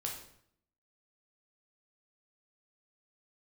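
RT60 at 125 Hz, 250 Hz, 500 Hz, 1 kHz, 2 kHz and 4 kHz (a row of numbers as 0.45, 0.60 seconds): 0.85, 0.85, 0.70, 0.65, 0.60, 0.55 seconds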